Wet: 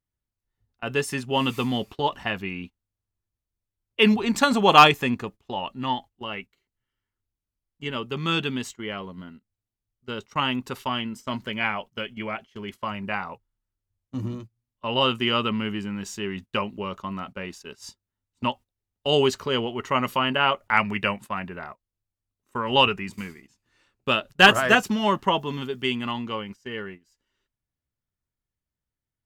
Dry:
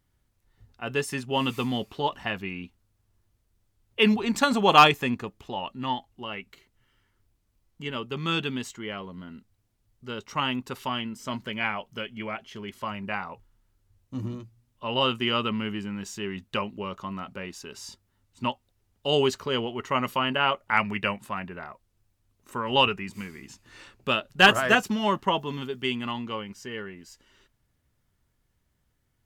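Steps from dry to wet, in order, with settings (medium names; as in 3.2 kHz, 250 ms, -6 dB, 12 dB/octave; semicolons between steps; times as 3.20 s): gate -41 dBFS, range -19 dB; trim +2.5 dB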